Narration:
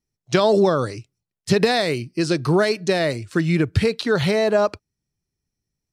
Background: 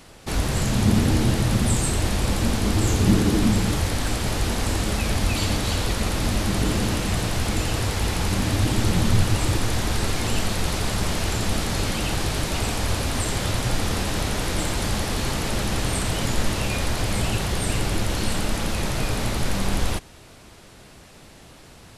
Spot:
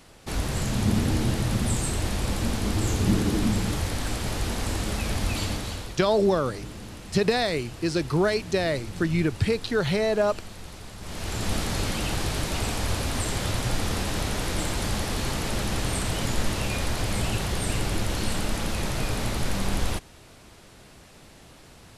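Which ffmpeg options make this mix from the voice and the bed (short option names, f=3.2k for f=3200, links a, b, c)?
-filter_complex "[0:a]adelay=5650,volume=-5dB[a];[1:a]volume=9.5dB,afade=t=out:st=5.39:d=0.59:silence=0.237137,afade=t=in:st=11:d=0.52:silence=0.199526[b];[a][b]amix=inputs=2:normalize=0"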